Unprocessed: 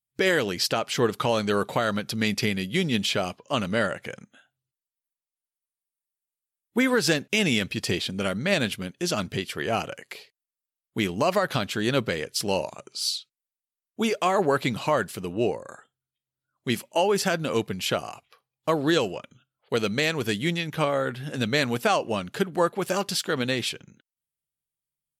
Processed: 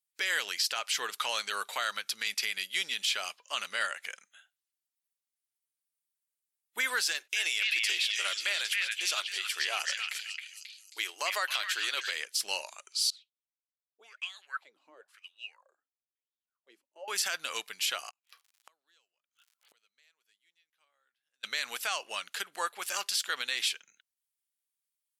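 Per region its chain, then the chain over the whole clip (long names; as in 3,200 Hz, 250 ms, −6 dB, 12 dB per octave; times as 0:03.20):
0:07.08–0:12.11: linear-phase brick-wall high-pass 280 Hz + echo through a band-pass that steps 269 ms, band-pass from 2,200 Hz, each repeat 0.7 octaves, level −1 dB
0:13.10–0:17.08: high-shelf EQ 6,200 Hz +10.5 dB + LFO wah 1 Hz 270–3,600 Hz, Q 8.9
0:18.09–0:21.43: surface crackle 110 per second −51 dBFS + gate with flip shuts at −31 dBFS, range −41 dB
whole clip: high-pass filter 1,500 Hz 12 dB per octave; parametric band 8,400 Hz +3 dB 1.9 octaves; brickwall limiter −18.5 dBFS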